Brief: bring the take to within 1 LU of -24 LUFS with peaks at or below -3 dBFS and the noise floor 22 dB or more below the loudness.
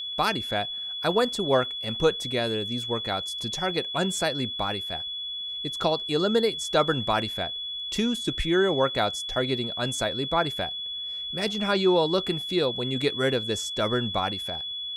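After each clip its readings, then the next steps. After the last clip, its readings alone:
steady tone 3.4 kHz; tone level -31 dBFS; loudness -26.0 LUFS; peak level -10.0 dBFS; loudness target -24.0 LUFS
-> band-stop 3.4 kHz, Q 30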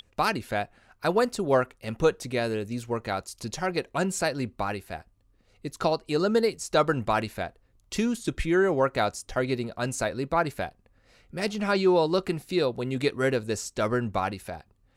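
steady tone not found; loudness -27.5 LUFS; peak level -10.0 dBFS; loudness target -24.0 LUFS
-> trim +3.5 dB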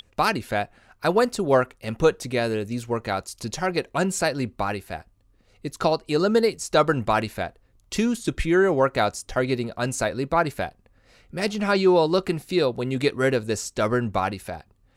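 loudness -24.0 LUFS; peak level -6.5 dBFS; noise floor -61 dBFS

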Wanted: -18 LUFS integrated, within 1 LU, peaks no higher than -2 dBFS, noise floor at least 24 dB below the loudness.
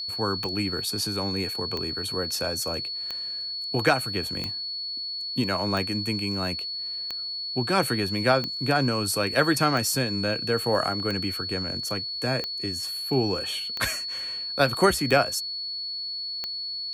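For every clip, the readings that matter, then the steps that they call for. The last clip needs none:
clicks found 13; steady tone 4.4 kHz; tone level -30 dBFS; loudness -26.0 LUFS; peak level -8.5 dBFS; loudness target -18.0 LUFS
-> de-click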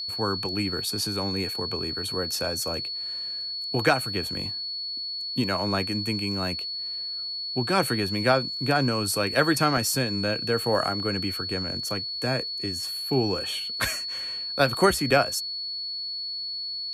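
clicks found 0; steady tone 4.4 kHz; tone level -30 dBFS
-> band-stop 4.4 kHz, Q 30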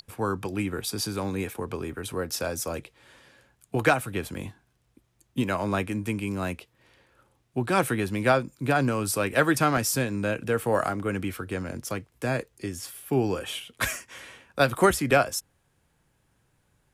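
steady tone not found; loudness -27.5 LUFS; peak level -9.0 dBFS; loudness target -18.0 LUFS
-> trim +9.5 dB; peak limiter -2 dBFS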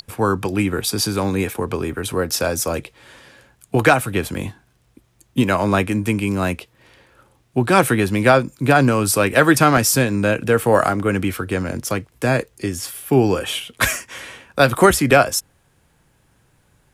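loudness -18.5 LUFS; peak level -2.0 dBFS; noise floor -60 dBFS

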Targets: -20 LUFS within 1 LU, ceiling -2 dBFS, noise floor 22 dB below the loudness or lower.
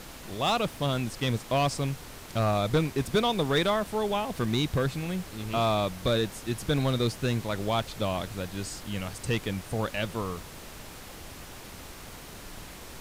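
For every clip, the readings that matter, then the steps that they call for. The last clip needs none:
clipped samples 0.6%; clipping level -18.0 dBFS; noise floor -45 dBFS; noise floor target -51 dBFS; loudness -29.0 LUFS; peak level -18.0 dBFS; loudness target -20.0 LUFS
-> clip repair -18 dBFS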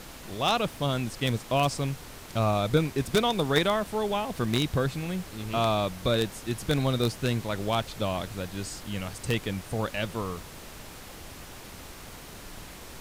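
clipped samples 0.0%; noise floor -45 dBFS; noise floor target -51 dBFS
-> noise print and reduce 6 dB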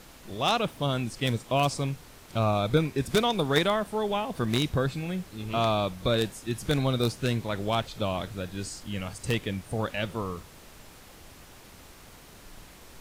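noise floor -50 dBFS; noise floor target -51 dBFS
-> noise print and reduce 6 dB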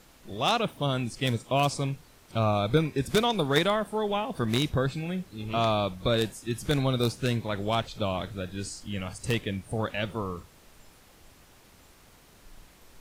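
noise floor -56 dBFS; loudness -28.5 LUFS; peak level -9.0 dBFS; loudness target -20.0 LUFS
-> trim +8.5 dB; peak limiter -2 dBFS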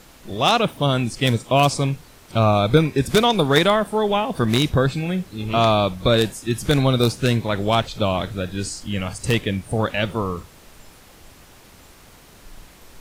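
loudness -20.0 LUFS; peak level -2.0 dBFS; noise floor -48 dBFS

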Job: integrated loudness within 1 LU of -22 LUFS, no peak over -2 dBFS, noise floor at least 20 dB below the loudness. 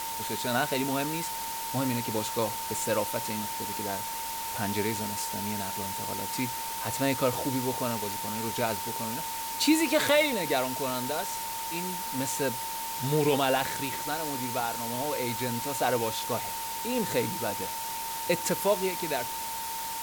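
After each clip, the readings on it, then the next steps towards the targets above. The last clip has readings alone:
steady tone 910 Hz; tone level -35 dBFS; noise floor -35 dBFS; noise floor target -50 dBFS; loudness -29.5 LUFS; peak level -12.0 dBFS; loudness target -22.0 LUFS
-> band-stop 910 Hz, Q 30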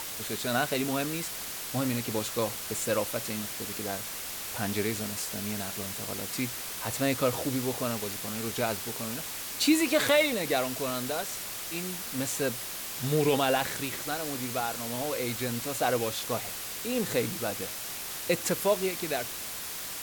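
steady tone not found; noise floor -38 dBFS; noise floor target -50 dBFS
-> noise print and reduce 12 dB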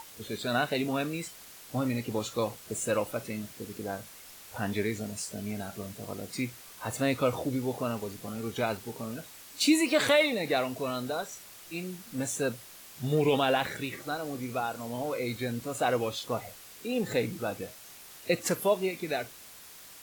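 noise floor -50 dBFS; noise floor target -52 dBFS
-> noise print and reduce 6 dB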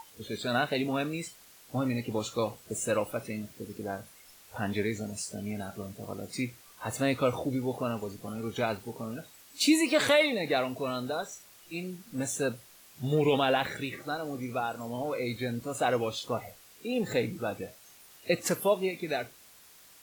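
noise floor -56 dBFS; loudness -31.5 LUFS; peak level -13.0 dBFS; loudness target -22.0 LUFS
-> trim +9.5 dB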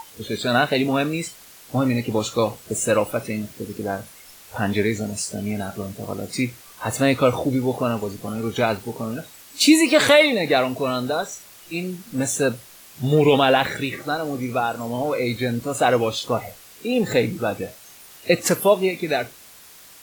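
loudness -22.0 LUFS; peak level -3.5 dBFS; noise floor -46 dBFS

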